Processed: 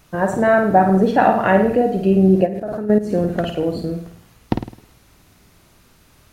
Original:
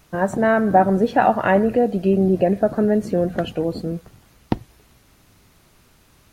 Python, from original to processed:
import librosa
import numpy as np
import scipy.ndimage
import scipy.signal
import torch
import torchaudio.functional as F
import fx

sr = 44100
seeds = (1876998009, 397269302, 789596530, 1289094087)

y = fx.room_flutter(x, sr, wall_m=9.0, rt60_s=0.51)
y = fx.level_steps(y, sr, step_db=13, at=(2.45, 3.11), fade=0.02)
y = y * 10.0 ** (1.0 / 20.0)